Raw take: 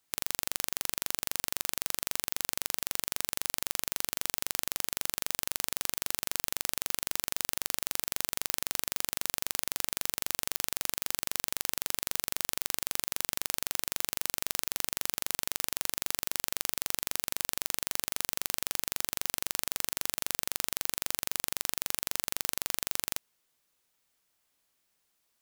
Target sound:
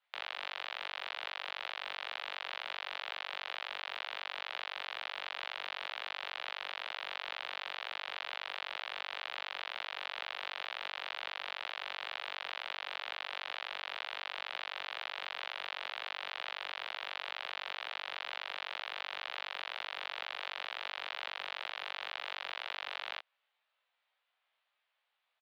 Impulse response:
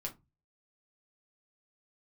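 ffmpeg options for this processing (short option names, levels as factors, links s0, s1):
-filter_complex "[0:a]flanger=delay=20:depth=4.7:speed=2.1,asplit=2[s0][s1];[s1]adelay=16,volume=0.562[s2];[s0][s2]amix=inputs=2:normalize=0,highpass=f=520:t=q:w=0.5412,highpass=f=520:t=q:w=1.307,lowpass=f=3600:t=q:w=0.5176,lowpass=f=3600:t=q:w=0.7071,lowpass=f=3600:t=q:w=1.932,afreqshift=73,volume=1.41"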